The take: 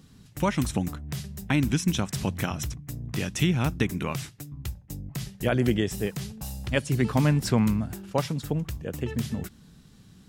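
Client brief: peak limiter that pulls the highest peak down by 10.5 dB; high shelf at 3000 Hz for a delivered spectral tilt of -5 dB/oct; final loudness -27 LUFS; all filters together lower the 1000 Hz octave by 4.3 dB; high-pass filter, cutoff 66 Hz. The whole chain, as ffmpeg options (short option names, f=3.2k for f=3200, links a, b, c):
-af "highpass=66,equalizer=f=1k:t=o:g=-6,highshelf=f=3k:g=3.5,volume=5dB,alimiter=limit=-15dB:level=0:latency=1"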